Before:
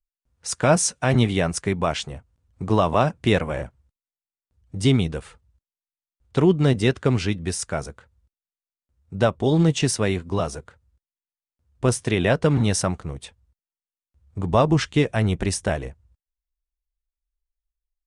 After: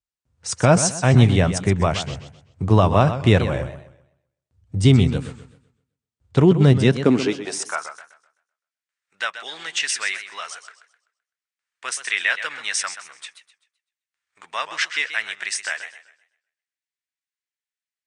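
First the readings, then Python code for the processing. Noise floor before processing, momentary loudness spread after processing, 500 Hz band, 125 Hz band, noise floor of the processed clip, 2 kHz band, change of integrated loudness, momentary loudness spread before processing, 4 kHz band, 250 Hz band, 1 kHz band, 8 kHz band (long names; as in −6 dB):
below −85 dBFS, 18 LU, −0.5 dB, +3.5 dB, below −85 dBFS, +5.5 dB, +2.0 dB, 17 LU, +3.0 dB, +1.0 dB, +0.5 dB, +1.5 dB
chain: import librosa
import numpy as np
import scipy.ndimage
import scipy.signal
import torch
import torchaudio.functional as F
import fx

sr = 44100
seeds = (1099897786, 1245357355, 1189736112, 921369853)

y = scipy.signal.sosfilt(scipy.signal.butter(12, 9400.0, 'lowpass', fs=sr, output='sos'), x)
y = fx.filter_sweep_highpass(y, sr, from_hz=93.0, to_hz=1800.0, start_s=6.68, end_s=7.96, q=2.3)
y = fx.echo_warbled(y, sr, ms=128, feedback_pct=33, rate_hz=2.8, cents=144, wet_db=-11)
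y = y * librosa.db_to_amplitude(1.5)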